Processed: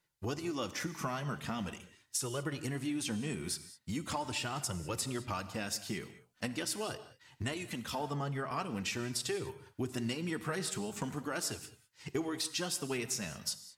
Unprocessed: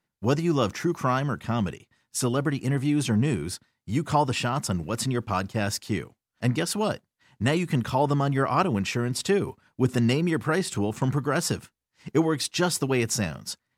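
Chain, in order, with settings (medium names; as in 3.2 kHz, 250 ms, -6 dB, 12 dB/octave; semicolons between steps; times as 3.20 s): treble shelf 2.1 kHz +8.5 dB; compression 6:1, threshold -30 dBFS, peak gain reduction 14 dB; flange 0.42 Hz, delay 1.9 ms, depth 3.2 ms, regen -35%; gated-style reverb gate 230 ms flat, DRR 12 dB; 7.54–8.51 s: three bands expanded up and down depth 70%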